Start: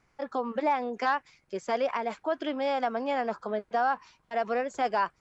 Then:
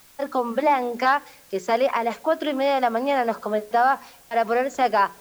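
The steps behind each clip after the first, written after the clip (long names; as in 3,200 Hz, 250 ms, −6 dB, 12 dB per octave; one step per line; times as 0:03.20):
mains-hum notches 60/120/180/240/300/360/420 Hz
bit-depth reduction 10 bits, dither triangular
on a send at −22 dB: convolution reverb RT60 1.0 s, pre-delay 3 ms
on the sum: level +7.5 dB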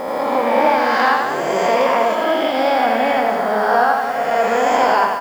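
peak hold with a rise ahead of every peak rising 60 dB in 2.00 s
on a send: reverse bouncing-ball delay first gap 80 ms, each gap 1.15×, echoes 5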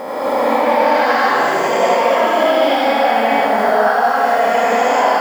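low-shelf EQ 91 Hz −10 dB
brickwall limiter −10.5 dBFS, peak gain reduction 8 dB
reverb whose tail is shaped and stops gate 310 ms rising, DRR −6 dB
level −1.5 dB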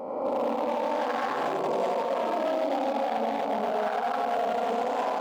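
adaptive Wiener filter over 25 samples
brickwall limiter −12 dBFS, peak gain reduction 9 dB
level −7.5 dB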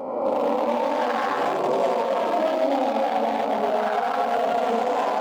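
flanger 1.1 Hz, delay 7 ms, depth 3.8 ms, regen +55%
level +9 dB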